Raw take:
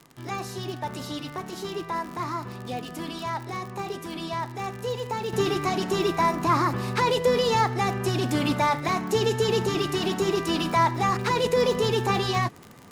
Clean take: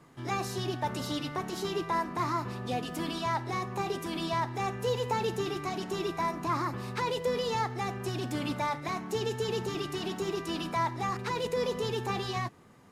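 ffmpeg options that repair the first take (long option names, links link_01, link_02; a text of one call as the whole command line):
ffmpeg -i in.wav -af "adeclick=threshold=4,asetnsamples=nb_out_samples=441:pad=0,asendcmd='5.33 volume volume -8.5dB',volume=0dB" out.wav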